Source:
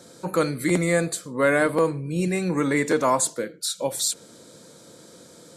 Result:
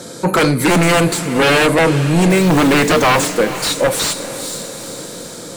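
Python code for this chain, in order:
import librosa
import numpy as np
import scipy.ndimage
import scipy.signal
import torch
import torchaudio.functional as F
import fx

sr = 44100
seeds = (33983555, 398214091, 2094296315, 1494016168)

p1 = fx.quant_companded(x, sr, bits=4, at=(2.3, 3.32))
p2 = fx.fold_sine(p1, sr, drive_db=12, ceiling_db=-8.5)
p3 = p2 + fx.echo_diffused(p2, sr, ms=456, feedback_pct=53, wet_db=-13.0, dry=0)
y = fx.slew_limit(p3, sr, full_power_hz=790.0)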